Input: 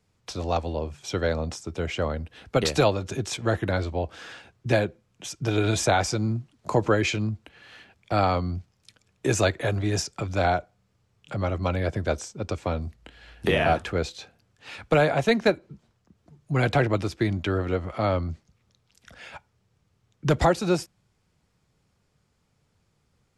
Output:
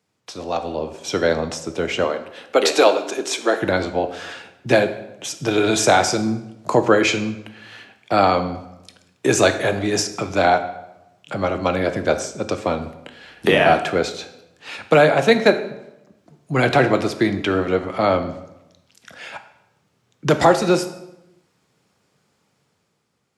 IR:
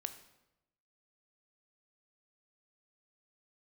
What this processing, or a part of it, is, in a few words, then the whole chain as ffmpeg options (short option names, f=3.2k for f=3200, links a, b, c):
far laptop microphone: -filter_complex "[0:a]asettb=1/sr,asplit=3[a][b][c];[a]atrim=end=2.044[d];[b]atrim=start=2.04:end=3.58,asetpts=PTS-STARTPTS,afade=t=in:d=0.004:c=qsin,afade=t=out:st=1.536:d=0.004:c=qsin,highpass=f=290:w=0.5412,highpass=f=290:w=1.3066[e];[c]atrim=start=3.576[f];[d][e]acrossfade=d=0.004:c1=hsin:c2=qsin[g];[g][f]acrossfade=d=0.004:c1=qsin:c2=hsin[h];[1:a]atrim=start_sample=2205[i];[h][i]afir=irnorm=-1:irlink=0,highpass=190,dynaudnorm=f=180:g=9:m=7dB,volume=3dB"